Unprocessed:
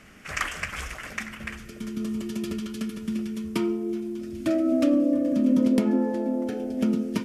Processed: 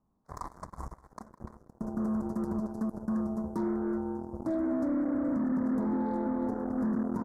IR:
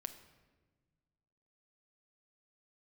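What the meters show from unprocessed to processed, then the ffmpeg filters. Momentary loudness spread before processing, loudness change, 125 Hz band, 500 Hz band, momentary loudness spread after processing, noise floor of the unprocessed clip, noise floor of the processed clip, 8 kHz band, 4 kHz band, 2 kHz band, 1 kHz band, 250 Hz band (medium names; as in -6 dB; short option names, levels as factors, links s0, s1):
13 LU, -5.5 dB, -3.5 dB, -7.0 dB, 16 LU, -43 dBFS, -67 dBFS, under -15 dB, under -25 dB, -16.5 dB, -1.0 dB, -6.0 dB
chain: -filter_complex "[0:a]firequalizer=gain_entry='entry(150,0);entry(550,-7);entry(990,7);entry(1400,-19)':delay=0.05:min_phase=1,alimiter=limit=0.0631:level=0:latency=1:release=28,aeval=exprs='0.0631*(cos(1*acos(clip(val(0)/0.0631,-1,1)))-cos(1*PI/2))+0.01*(cos(7*acos(clip(val(0)/0.0631,-1,1)))-cos(7*PI/2))':c=same,asuperstop=centerf=2800:order=4:qfactor=0.65,asplit=2[s0][s1];[s1]aecho=0:1:195:0.0708[s2];[s0][s2]amix=inputs=2:normalize=0"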